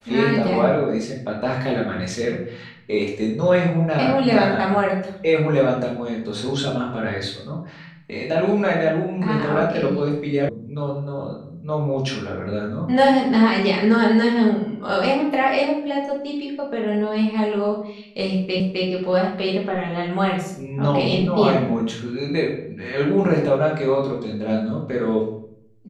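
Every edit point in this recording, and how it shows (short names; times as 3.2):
10.49 sound cut off
18.6 repeat of the last 0.26 s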